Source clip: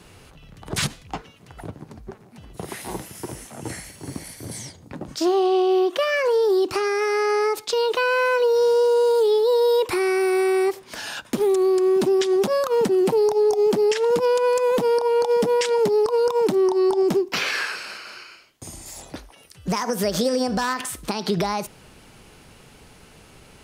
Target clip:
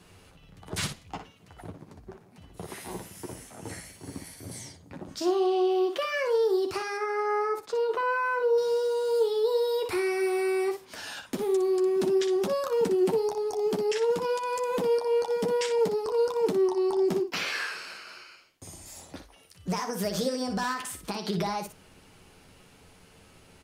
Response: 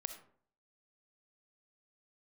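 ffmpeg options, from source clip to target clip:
-filter_complex "[0:a]asettb=1/sr,asplit=3[a][b][c];[a]atrim=end=6.974[d];[b]atrim=start=6.97:end=8.58,asetpts=PTS-STARTPTS,afade=t=in:d=0.004:c=qsin,afade=t=out:st=1.606:d=0.004:c=qsin,highshelf=f=2.1k:t=q:w=1.5:g=-9.5[e];[c]atrim=start=8.576[f];[d][e]acrossfade=d=0.004:c1=hsin:c2=qsin[g];[g][f]acrossfade=d=0.004:c1=qsin:c2=hsin,asplit=2[h][i];[i]aecho=0:1:11|60:0.473|0.398[j];[h][j]amix=inputs=2:normalize=0,volume=-8dB"

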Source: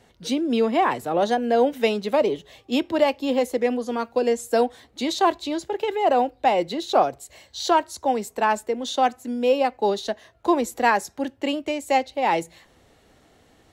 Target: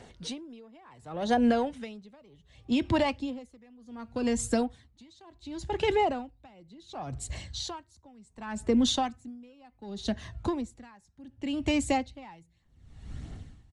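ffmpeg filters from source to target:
-filter_complex "[0:a]asubboost=boost=10:cutoff=150,acompressor=threshold=-23dB:ratio=6,asplit=2[a][b];[b]asoftclip=type=tanh:threshold=-25.5dB,volume=-4.5dB[c];[a][c]amix=inputs=2:normalize=0,aphaser=in_gain=1:out_gain=1:delay=1.2:decay=0.31:speed=1.5:type=triangular,aresample=22050,aresample=44100,aeval=exprs='val(0)*pow(10,-31*(0.5-0.5*cos(2*PI*0.68*n/s))/20)':c=same"

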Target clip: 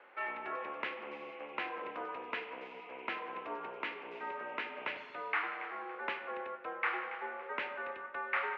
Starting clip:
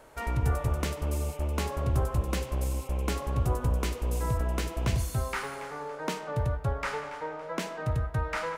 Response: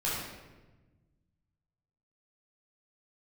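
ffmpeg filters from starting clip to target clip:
-filter_complex "[0:a]aderivative,highpass=f=320:t=q:w=0.5412,highpass=f=320:t=q:w=1.307,lowpass=f=2.6k:t=q:w=0.5176,lowpass=f=2.6k:t=q:w=0.7071,lowpass=f=2.6k:t=q:w=1.932,afreqshift=-76,asplit=2[a][b];[1:a]atrim=start_sample=2205[c];[b][c]afir=irnorm=-1:irlink=0,volume=-20dB[d];[a][d]amix=inputs=2:normalize=0,volume=13dB"

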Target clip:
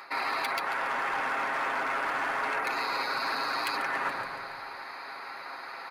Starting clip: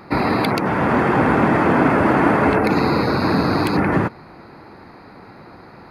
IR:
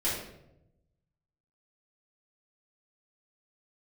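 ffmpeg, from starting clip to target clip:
-filter_complex "[0:a]asplit=2[a][b];[b]alimiter=limit=-13dB:level=0:latency=1:release=206,volume=-3dB[c];[a][c]amix=inputs=2:normalize=0,acontrast=36,highpass=1.1k,asplit=7[d][e][f][g][h][i][j];[e]adelay=141,afreqshift=-65,volume=-13dB[k];[f]adelay=282,afreqshift=-130,volume=-18.4dB[l];[g]adelay=423,afreqshift=-195,volume=-23.7dB[m];[h]adelay=564,afreqshift=-260,volume=-29.1dB[n];[i]adelay=705,afreqshift=-325,volume=-34.4dB[o];[j]adelay=846,afreqshift=-390,volume=-39.8dB[p];[d][k][l][m][n][o][p]amix=inputs=7:normalize=0,asoftclip=type=hard:threshold=-11dB,aecho=1:1:7.4:0.43,areverse,acompressor=threshold=-25dB:ratio=6,areverse,volume=-3.5dB"

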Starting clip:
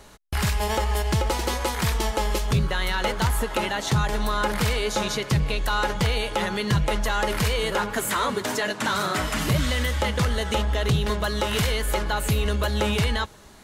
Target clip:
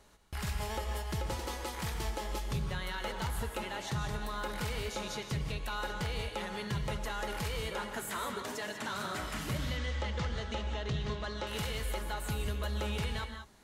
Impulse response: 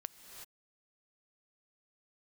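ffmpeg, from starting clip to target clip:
-filter_complex "[0:a]asettb=1/sr,asplit=3[a][b][c];[a]atrim=end=9.584[d];[b]atrim=start=9.58:end=11.47,asetpts=PTS-STARTPTS,afade=t=in:d=0.004:c=qsin,afade=t=out:st=1.886:d=0.004:c=qsin,lowpass=f=6.6k:w=0.5412,lowpass=f=6.6k:w=1.3066[e];[c]atrim=start=11.466[f];[d][e]acrossfade=d=0.004:c1=hsin:c2=qsin[g];[g][f]acrossfade=d=0.004:c1=qsin:c2=hsin[h];[1:a]atrim=start_sample=2205,asetrate=83790,aresample=44100[i];[h][i]afir=irnorm=-1:irlink=0,volume=-3.5dB"

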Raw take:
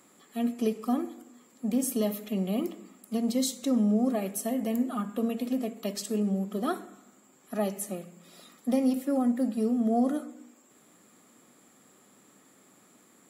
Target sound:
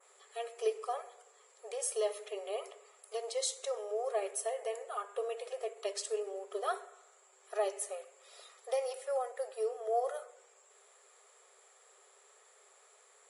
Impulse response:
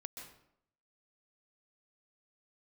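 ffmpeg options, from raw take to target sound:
-af "adynamicequalizer=threshold=0.00158:dfrequency=4400:dqfactor=0.9:tfrequency=4400:tqfactor=0.9:attack=5:release=100:ratio=0.375:range=2:mode=cutabove:tftype=bell,afftfilt=real='re*between(b*sr/4096,380,11000)':imag='im*between(b*sr/4096,380,11000)':win_size=4096:overlap=0.75,volume=-1.5dB"

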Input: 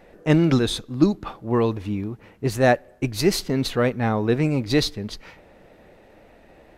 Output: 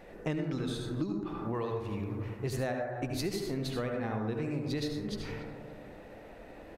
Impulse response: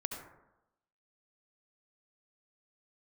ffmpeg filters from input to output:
-filter_complex "[0:a]asettb=1/sr,asplit=3[a][b][c];[a]atrim=end=1.524[d];[b]atrim=start=1.52:end=2.48,asetpts=PTS-STARTPTS,afade=t=in:d=0.004:c=qsin,afade=t=out:st=0.956:d=0.004:c=qsin,equalizer=f=260:t=o:w=0.87:g=-10.5[e];[c]atrim=start=2.476[f];[d][e]acrossfade=d=0.004:c1=hsin:c2=qsin[g];[g][f]acrossfade=d=0.004:c1=qsin:c2=hsin,asplit=2[h][i];[i]adelay=283,lowpass=f=1.9k:p=1,volume=-21dB,asplit=2[j][k];[k]adelay=283,lowpass=f=1.9k:p=1,volume=0.53,asplit=2[l][m];[m]adelay=283,lowpass=f=1.9k:p=1,volume=0.53,asplit=2[n][o];[o]adelay=283,lowpass=f=1.9k:p=1,volume=0.53[p];[h][j][l][n][p]amix=inputs=5:normalize=0[q];[1:a]atrim=start_sample=2205[r];[q][r]afir=irnorm=-1:irlink=0,acompressor=threshold=-31dB:ratio=10"

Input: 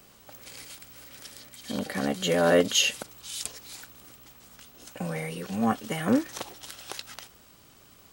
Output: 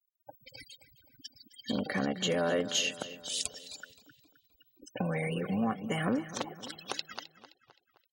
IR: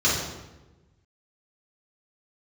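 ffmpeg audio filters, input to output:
-filter_complex "[0:a]afftfilt=real='re*gte(hypot(re,im),0.0126)':imag='im*gte(hypot(re,im),0.0126)':win_size=1024:overlap=0.75,lowpass=8.9k,acompressor=threshold=-33dB:ratio=4,asplit=2[a][b];[b]adelay=261,lowpass=f=4k:p=1,volume=-14dB,asplit=2[c][d];[d]adelay=261,lowpass=f=4k:p=1,volume=0.54,asplit=2[e][f];[f]adelay=261,lowpass=f=4k:p=1,volume=0.54,asplit=2[g][h];[h]adelay=261,lowpass=f=4k:p=1,volume=0.54,asplit=2[i][j];[j]adelay=261,lowpass=f=4k:p=1,volume=0.54[k];[c][e][g][i][k]amix=inputs=5:normalize=0[l];[a][l]amix=inputs=2:normalize=0,volume=4dB"

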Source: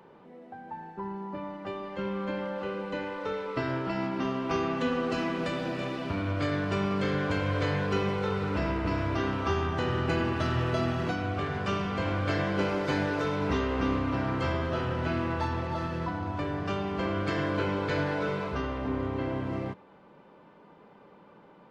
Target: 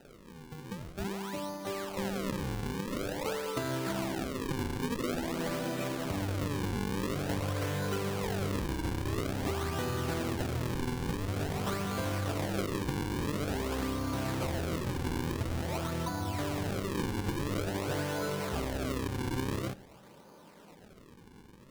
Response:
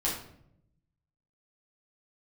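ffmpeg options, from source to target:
-filter_complex "[0:a]asettb=1/sr,asplit=3[a][b][c];[a]atrim=end=4.204[d];[b]atrim=start=4.2:end=4.77,asetpts=PTS-STARTPTS,afade=t=in:d=0.004:c=qsin,afade=t=out:st=0.566:d=0.004:c=qsin,highpass=f=390:p=1[e];[c]atrim=start=4.766[f];[d][e]acrossfade=d=0.004:c1=hsin:c2=qsin[g];[g][f]acrossfade=d=0.004:c1=qsin:c2=hsin,acompressor=threshold=-30dB:ratio=6,acrusher=samples=39:mix=1:aa=0.000001:lfo=1:lforange=62.4:lforate=0.48,asplit=2[h][i];[1:a]atrim=start_sample=2205,asetrate=33075,aresample=44100[j];[i][j]afir=irnorm=-1:irlink=0,volume=-28.5dB[k];[h][k]amix=inputs=2:normalize=0"

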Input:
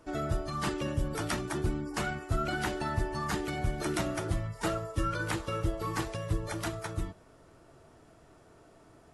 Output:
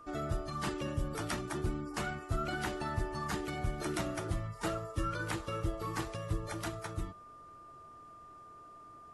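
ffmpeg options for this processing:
-af "aeval=exprs='val(0)+0.00447*sin(2*PI*1200*n/s)':c=same,volume=-4dB"

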